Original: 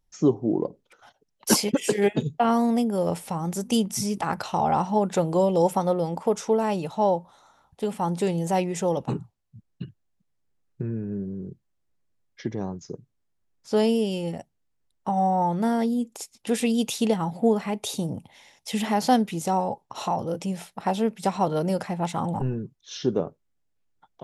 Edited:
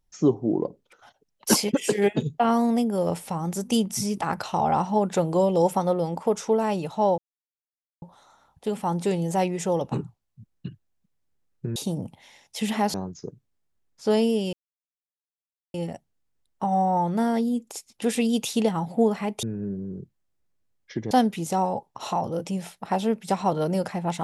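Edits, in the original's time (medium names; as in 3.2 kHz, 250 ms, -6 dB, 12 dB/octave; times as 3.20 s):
7.18 s: insert silence 0.84 s
10.92–12.60 s: swap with 17.88–19.06 s
14.19 s: insert silence 1.21 s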